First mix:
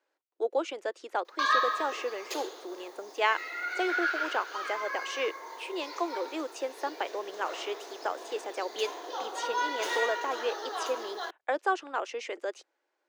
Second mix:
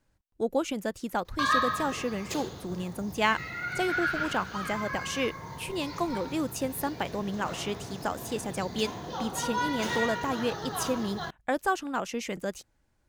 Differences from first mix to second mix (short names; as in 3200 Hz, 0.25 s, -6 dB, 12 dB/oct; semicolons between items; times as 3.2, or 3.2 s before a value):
speech: remove air absorption 110 m; master: remove steep high-pass 340 Hz 48 dB/oct